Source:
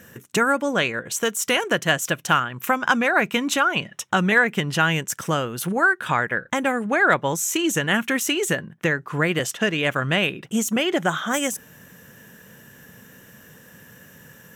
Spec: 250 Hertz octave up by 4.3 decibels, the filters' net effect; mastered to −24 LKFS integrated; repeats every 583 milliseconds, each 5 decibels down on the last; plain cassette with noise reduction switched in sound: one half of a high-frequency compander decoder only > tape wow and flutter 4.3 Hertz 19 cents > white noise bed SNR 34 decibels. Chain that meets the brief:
parametric band 250 Hz +5.5 dB
repeating echo 583 ms, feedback 56%, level −5 dB
one half of a high-frequency compander decoder only
tape wow and flutter 4.3 Hz 19 cents
white noise bed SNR 34 dB
level −4.5 dB

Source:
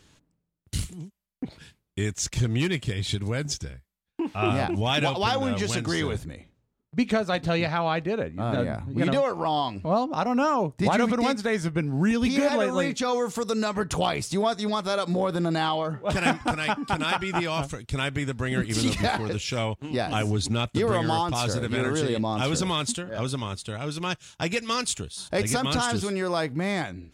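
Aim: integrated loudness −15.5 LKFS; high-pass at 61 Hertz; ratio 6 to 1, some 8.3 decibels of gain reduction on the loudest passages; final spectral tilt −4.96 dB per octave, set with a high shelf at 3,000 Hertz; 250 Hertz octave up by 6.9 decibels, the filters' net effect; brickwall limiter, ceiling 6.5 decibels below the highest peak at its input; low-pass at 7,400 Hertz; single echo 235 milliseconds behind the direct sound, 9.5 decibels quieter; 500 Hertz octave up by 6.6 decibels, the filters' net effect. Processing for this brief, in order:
high-pass filter 61 Hz
low-pass filter 7,400 Hz
parametric band 250 Hz +7 dB
parametric band 500 Hz +6 dB
high-shelf EQ 3,000 Hz +6.5 dB
downward compressor 6 to 1, threshold −20 dBFS
brickwall limiter −16.5 dBFS
single-tap delay 235 ms −9.5 dB
level +11 dB

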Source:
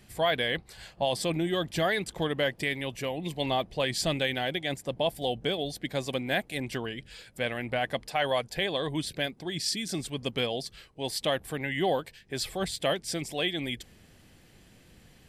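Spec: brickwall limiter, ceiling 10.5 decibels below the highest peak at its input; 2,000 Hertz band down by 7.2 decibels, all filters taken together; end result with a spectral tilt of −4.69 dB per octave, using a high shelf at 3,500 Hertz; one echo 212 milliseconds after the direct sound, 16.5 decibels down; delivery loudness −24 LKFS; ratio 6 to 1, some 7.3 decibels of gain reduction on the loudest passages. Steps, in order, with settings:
parametric band 2,000 Hz −6.5 dB
high-shelf EQ 3,500 Hz −8 dB
downward compressor 6 to 1, threshold −31 dBFS
brickwall limiter −32 dBFS
single-tap delay 212 ms −16.5 dB
level +18 dB

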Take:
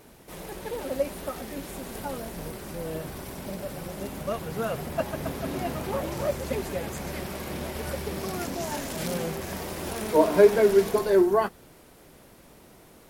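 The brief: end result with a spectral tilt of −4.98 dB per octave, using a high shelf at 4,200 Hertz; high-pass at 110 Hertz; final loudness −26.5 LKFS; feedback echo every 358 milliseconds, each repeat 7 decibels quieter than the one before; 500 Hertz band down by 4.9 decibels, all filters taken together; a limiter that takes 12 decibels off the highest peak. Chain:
high-pass filter 110 Hz
parametric band 500 Hz −6.5 dB
high-shelf EQ 4,200 Hz −5 dB
brickwall limiter −22 dBFS
repeating echo 358 ms, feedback 45%, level −7 dB
level +8 dB

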